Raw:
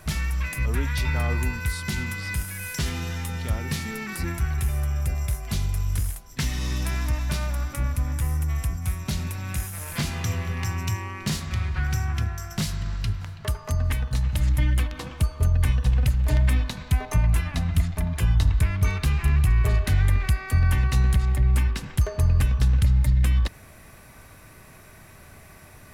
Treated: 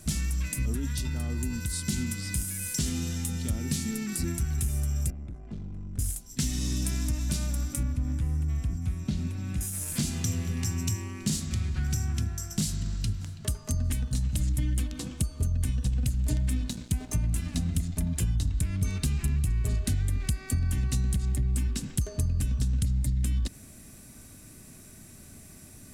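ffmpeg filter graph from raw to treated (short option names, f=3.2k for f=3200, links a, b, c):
-filter_complex "[0:a]asettb=1/sr,asplit=3[a][b][c];[a]atrim=end=0.734[d];[b]atrim=start=0.73:end=1.77,asetpts=PTS-STARTPTS,afade=t=in:d=0.004:c=qsin,afade=t=out:st=1.036:d=0.004:c=qsin,bandreject=f=2.3k:w=7.7,acompressor=threshold=-24dB:ratio=6:attack=3.2:release=140:knee=1:detection=peak[e];[c]atrim=start=1.766[f];[d][e]acrossfade=d=0.004:c1=hsin:c2=qsin[g];[g][f]acrossfade=d=0.004:c1=qsin:c2=hsin,asettb=1/sr,asplit=3[h][i][j];[h]atrim=end=5.104[k];[i]atrim=start=5.1:end=5.99,asetpts=PTS-STARTPTS,afade=t=in:d=0.004:c=qsin,afade=t=out:st=0.886:d=0.004:c=qsin,lowpass=1.2k,lowshelf=f=150:g=-6.5,aeval=exprs='(tanh(44.7*val(0)+0.4)-tanh(0.4))/44.7':c=same[l];[j]atrim=start=5.986[m];[k][l]acrossfade=d=0.004:c1=hsin:c2=qsin[n];[n][m]acrossfade=d=0.004:c1=qsin:c2=hsin,asettb=1/sr,asplit=3[o][p][q];[o]atrim=end=7.834[r];[p]atrim=start=7.83:end=9.61,asetpts=PTS-STARTPTS,afade=t=in:d=0.004:c=qsin,afade=t=out:st=1.776:d=0.004:c=qsin,acrossover=split=4700[s][t];[t]acompressor=threshold=-51dB:ratio=4:attack=1:release=60[u];[s][u]amix=inputs=2:normalize=0,highshelf=f=4.3k:g=-10[v];[q]atrim=start=9.606[w];[r][v]acrossfade=d=0.004:c1=hsin:c2=qsin[x];[x][w]acrossfade=d=0.004:c1=qsin:c2=hsin,asettb=1/sr,asplit=3[y][z][aa];[y]atrim=end=16.414[ab];[z]atrim=start=16.41:end=17.9,asetpts=PTS-STARTPTS,afade=t=in:d=0.004:c=qsin,afade=t=out:st=1.486:d=0.004:c=qsin,aeval=exprs='val(0)+0.01*(sin(2*PI*60*n/s)+sin(2*PI*2*60*n/s)/2+sin(2*PI*3*60*n/s)/3+sin(2*PI*4*60*n/s)/4+sin(2*PI*5*60*n/s)/5)':c=same,aeval=exprs='sgn(val(0))*max(abs(val(0))-0.00891,0)':c=same[ac];[aa]atrim=start=17.896[ad];[ab][ac]acrossfade=d=0.004:c1=hsin:c2=qsin[ae];[ae][ad]acrossfade=d=0.004:c1=qsin:c2=hsin,equalizer=f=250:t=o:w=1:g=9,equalizer=f=500:t=o:w=1:g=-4,equalizer=f=1k:t=o:w=1:g=-9,equalizer=f=2k:t=o:w=1:g=-6,equalizer=f=8k:t=o:w=1:g=11,acompressor=threshold=-20dB:ratio=6,volume=-3dB"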